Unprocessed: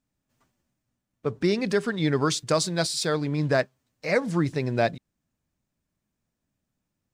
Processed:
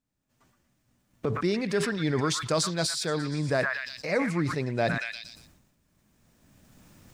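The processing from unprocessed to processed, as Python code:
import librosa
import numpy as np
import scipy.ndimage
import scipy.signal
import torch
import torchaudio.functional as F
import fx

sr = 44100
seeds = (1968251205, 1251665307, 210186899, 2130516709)

y = fx.recorder_agc(x, sr, target_db=-21.5, rise_db_per_s=15.0, max_gain_db=30)
y = fx.echo_stepped(y, sr, ms=118, hz=1500.0, octaves=0.7, feedback_pct=70, wet_db=-6.5)
y = fx.sustainer(y, sr, db_per_s=52.0)
y = y * librosa.db_to_amplitude(-4.0)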